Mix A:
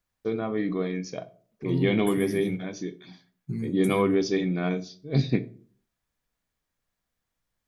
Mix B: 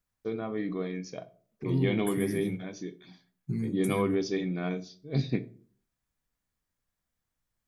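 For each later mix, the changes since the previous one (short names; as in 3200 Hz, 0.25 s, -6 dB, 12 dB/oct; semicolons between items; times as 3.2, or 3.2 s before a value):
first voice -5.0 dB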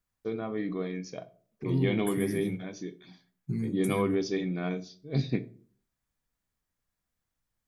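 none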